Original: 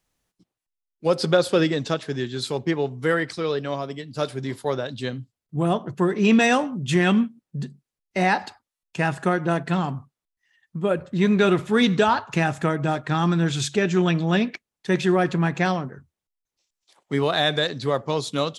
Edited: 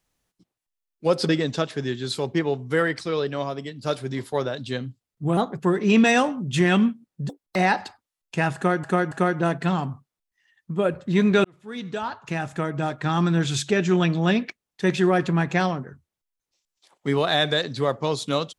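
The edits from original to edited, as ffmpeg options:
-filter_complex "[0:a]asplit=9[a][b][c][d][e][f][g][h][i];[a]atrim=end=1.292[j];[b]atrim=start=1.608:end=5.694[k];[c]atrim=start=5.69:end=5.95,asetpts=PTS-STARTPTS,asetrate=49833,aresample=44100[l];[d]atrim=start=5.946:end=7.644[m];[e]atrim=start=7.64:end=8.17,asetpts=PTS-STARTPTS,asetrate=88200,aresample=44100,atrim=end_sample=11686,asetpts=PTS-STARTPTS[n];[f]atrim=start=8.166:end=9.452[o];[g]atrim=start=9.168:end=9.452[p];[h]atrim=start=9.168:end=11.5,asetpts=PTS-STARTPTS,afade=t=out:st=2.328:d=0.004:c=hsin[q];[i]atrim=start=11.5,asetpts=PTS-STARTPTS,afade=t=in:d=1.87[r];[j][k]acrossfade=d=0.004:c1=hsin:c2=hsin[s];[s][l]acrossfade=d=0.004:c1=hsin:c2=hsin[t];[t][m]acrossfade=d=0.004:c1=hsin:c2=hsin[u];[u][n]acrossfade=d=0.004:c1=hsin:c2=hsin[v];[v][o]acrossfade=d=0.004:c1=hsin:c2=hsin[w];[w][p]acrossfade=d=0.004:c1=hsin:c2=hsin[x];[q][r]concat=n=2:v=0:a=1[y];[x][y]acrossfade=d=0.004:c1=hsin:c2=hsin"

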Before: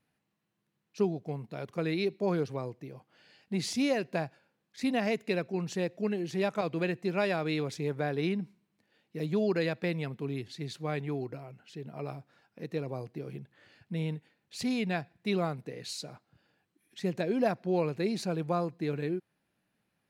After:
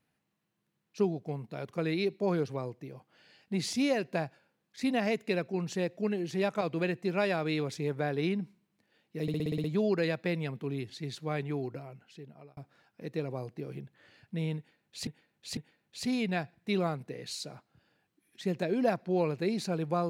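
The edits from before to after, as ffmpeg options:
-filter_complex "[0:a]asplit=11[a][b][c][d][e][f][g][h][i][j][k];[a]atrim=end=9.282[l];[b]atrim=start=9.218:end=9.282[m];[c]atrim=start=9.218:end=9.282[n];[d]atrim=start=9.218:end=9.282[o];[e]atrim=start=9.218:end=9.282[p];[f]atrim=start=9.218:end=9.282[q];[g]atrim=start=9.218:end=9.282[r];[h]atrim=start=9.218:end=12.15,asetpts=PTS-STARTPTS,afade=t=out:st=2.262:d=0.67[s];[i]atrim=start=12.15:end=14.652,asetpts=PTS-STARTPTS,afade=t=in:d=0.004:c=hsin[t];[j]atrim=start=14.148:end=14.652[u];[k]atrim=start=14.148[v];[l][m]acrossfade=d=0.004:c1=hsin:c2=hsin[w];[w][n]acrossfade=d=0.004:c1=hsin:c2=hsin[x];[x][o]acrossfade=d=0.004:c1=hsin:c2=hsin[y];[y][p]acrossfade=d=0.004:c1=hsin:c2=hsin[z];[z][q]acrossfade=d=0.004:c1=hsin:c2=hsin[aa];[aa][r]acrossfade=d=0.004:c1=hsin:c2=hsin[ab];[s][t]concat=n=2:v=0:a=1[ac];[ab][ac]acrossfade=d=0.004:c1=hsin:c2=hsin[ad];[ad][u]acrossfade=d=0.004:c1=hsin:c2=hsin[ae];[ae][v]acrossfade=d=0.004:c1=hsin:c2=hsin"

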